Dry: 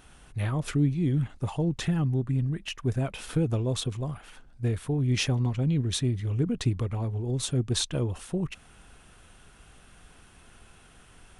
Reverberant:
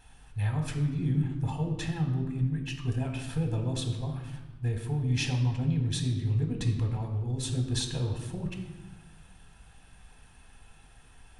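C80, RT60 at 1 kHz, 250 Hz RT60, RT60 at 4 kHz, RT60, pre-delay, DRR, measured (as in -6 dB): 9.0 dB, 1.2 s, 1.8 s, 0.95 s, 1.2 s, 4 ms, 4.0 dB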